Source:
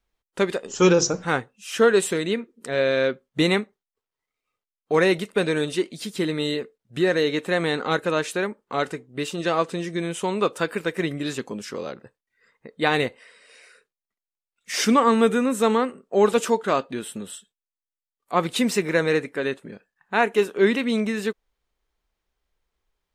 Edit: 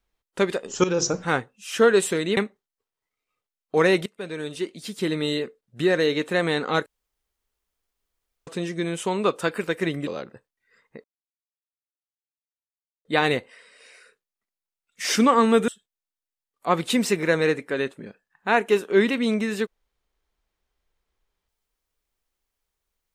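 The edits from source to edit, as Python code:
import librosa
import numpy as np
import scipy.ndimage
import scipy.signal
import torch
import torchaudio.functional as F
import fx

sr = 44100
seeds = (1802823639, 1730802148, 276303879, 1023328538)

y = fx.edit(x, sr, fx.fade_in_from(start_s=0.84, length_s=0.26, floor_db=-16.0),
    fx.cut(start_s=2.37, length_s=1.17),
    fx.fade_in_from(start_s=5.23, length_s=1.09, floor_db=-19.5),
    fx.room_tone_fill(start_s=8.03, length_s=1.61),
    fx.cut(start_s=11.24, length_s=0.53),
    fx.insert_silence(at_s=12.74, length_s=2.01),
    fx.cut(start_s=15.37, length_s=1.97), tone=tone)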